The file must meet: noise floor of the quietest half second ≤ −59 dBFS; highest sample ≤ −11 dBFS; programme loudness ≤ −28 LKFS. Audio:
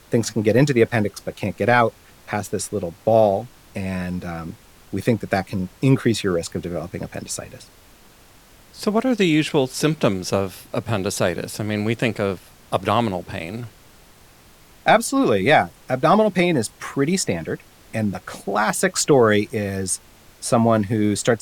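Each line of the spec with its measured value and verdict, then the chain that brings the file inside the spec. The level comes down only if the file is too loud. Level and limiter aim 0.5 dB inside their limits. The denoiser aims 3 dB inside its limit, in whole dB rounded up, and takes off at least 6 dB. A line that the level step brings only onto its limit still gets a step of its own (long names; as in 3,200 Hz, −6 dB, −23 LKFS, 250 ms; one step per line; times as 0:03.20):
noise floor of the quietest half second −49 dBFS: out of spec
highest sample −4.0 dBFS: out of spec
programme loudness −21.0 LKFS: out of spec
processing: broadband denoise 6 dB, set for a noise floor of −49 dBFS
level −7.5 dB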